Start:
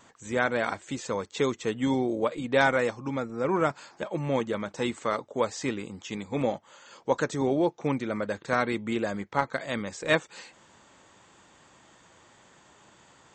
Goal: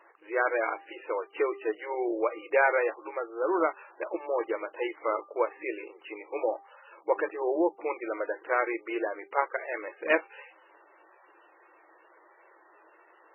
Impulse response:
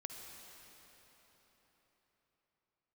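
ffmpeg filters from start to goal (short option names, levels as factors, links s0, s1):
-af "afftfilt=real='re*between(b*sr/4096,310,5500)':imag='im*between(b*sr/4096,310,5500)':win_size=4096:overlap=0.75,bandreject=f=396.9:t=h:w=4,bandreject=f=793.8:t=h:w=4,bandreject=f=1190.7:t=h:w=4" -ar 16000 -c:a libmp3lame -b:a 8k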